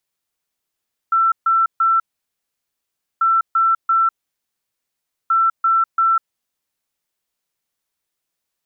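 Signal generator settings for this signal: beep pattern sine 1.34 kHz, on 0.20 s, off 0.14 s, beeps 3, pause 1.21 s, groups 3, -12 dBFS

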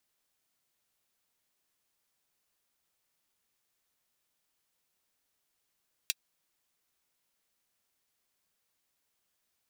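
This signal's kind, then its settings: closed hi-hat, high-pass 2.9 kHz, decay 0.04 s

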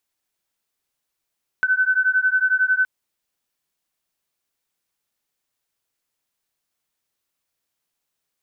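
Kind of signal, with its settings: beating tones 1.51 kHz, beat 11 Hz, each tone -19 dBFS 1.22 s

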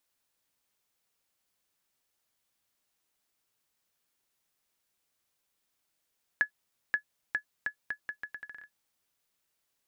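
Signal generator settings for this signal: bouncing ball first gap 0.53 s, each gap 0.77, 1.7 kHz, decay 94 ms -15 dBFS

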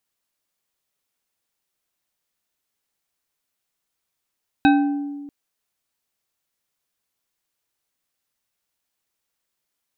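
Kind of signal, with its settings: glass hit bar, length 0.64 s, lowest mode 286 Hz, decay 1.61 s, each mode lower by 4 dB, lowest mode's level -11 dB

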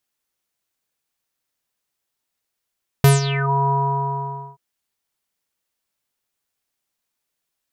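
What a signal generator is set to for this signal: synth note square C#3 24 dB/octave, low-pass 960 Hz, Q 9.4, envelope 4 oct, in 0.45 s, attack 1.4 ms, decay 0.16 s, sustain -13 dB, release 0.87 s, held 0.66 s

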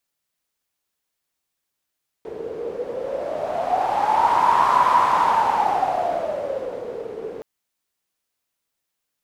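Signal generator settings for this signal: wind-like swept noise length 5.17 s, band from 440 Hz, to 1 kHz, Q 11, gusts 1, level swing 14.5 dB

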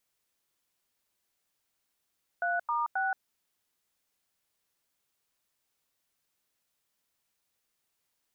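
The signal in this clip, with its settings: DTMF "3*6", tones 176 ms, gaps 91 ms, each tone -29.5 dBFS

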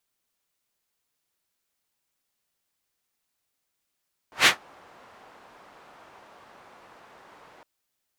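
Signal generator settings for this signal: whoosh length 3.31 s, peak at 0.14 s, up 0.13 s, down 0.14 s, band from 940 Hz, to 2.5 kHz, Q 1.1, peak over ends 37 dB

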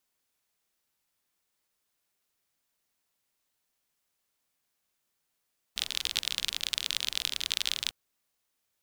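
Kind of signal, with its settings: rain from filtered ticks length 2.15 s, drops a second 40, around 3.5 kHz, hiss -20 dB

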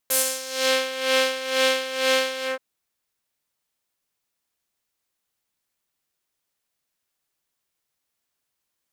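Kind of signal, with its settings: synth patch with tremolo C5, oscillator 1 triangle, interval +12 st, oscillator 2 level -16.5 dB, sub -12 dB, noise -16.5 dB, filter bandpass, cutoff 1.4 kHz, Q 1.2, filter envelope 3 oct, filter decay 0.66 s, attack 10 ms, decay 0.13 s, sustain -8 dB, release 0.14 s, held 2.34 s, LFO 2.1 Hz, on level 12.5 dB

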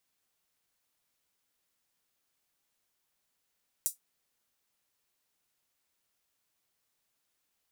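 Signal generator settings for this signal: closed hi-hat, high-pass 7.8 kHz, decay 0.14 s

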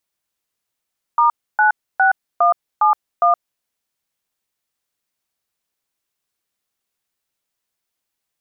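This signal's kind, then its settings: DTMF "*96171", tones 120 ms, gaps 288 ms, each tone -13 dBFS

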